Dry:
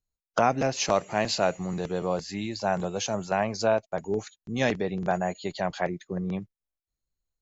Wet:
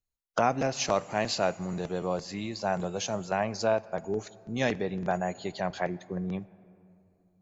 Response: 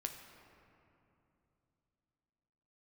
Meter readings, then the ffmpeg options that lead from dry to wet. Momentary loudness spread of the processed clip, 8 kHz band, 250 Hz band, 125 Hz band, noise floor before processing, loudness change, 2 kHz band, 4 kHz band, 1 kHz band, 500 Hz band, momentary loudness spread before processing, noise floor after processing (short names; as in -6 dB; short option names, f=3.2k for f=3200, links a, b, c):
8 LU, n/a, -2.5 dB, -2.5 dB, under -85 dBFS, -2.5 dB, -2.5 dB, -2.5 dB, -2.5 dB, -2.5 dB, 8 LU, -70 dBFS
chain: -filter_complex "[0:a]asplit=2[a][b];[1:a]atrim=start_sample=2205[c];[b][c]afir=irnorm=-1:irlink=0,volume=-9.5dB[d];[a][d]amix=inputs=2:normalize=0,volume=-4.5dB"